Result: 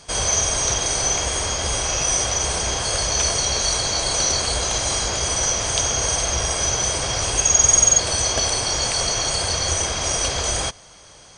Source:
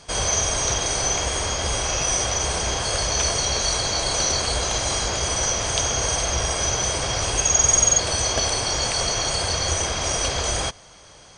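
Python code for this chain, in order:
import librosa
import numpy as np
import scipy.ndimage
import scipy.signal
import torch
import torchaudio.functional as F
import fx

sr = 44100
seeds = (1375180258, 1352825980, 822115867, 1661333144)

y = fx.high_shelf(x, sr, hz=7300.0, db=6.5)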